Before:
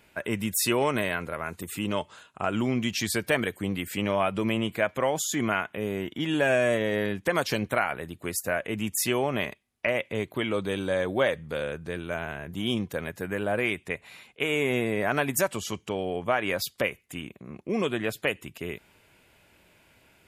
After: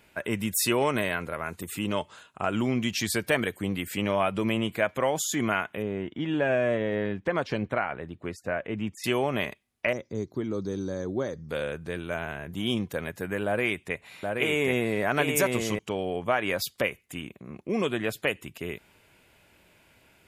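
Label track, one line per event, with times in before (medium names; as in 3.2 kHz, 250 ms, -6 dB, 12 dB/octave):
5.820000	9.040000	tape spacing loss at 10 kHz 23 dB
9.930000	11.490000	FFT filter 380 Hz 0 dB, 590 Hz -10 dB, 1.3 kHz -10 dB, 2.1 kHz -18 dB, 2.9 kHz -25 dB, 5.5 kHz +15 dB, 8.6 kHz -18 dB
13.450000	15.790000	delay 777 ms -3.5 dB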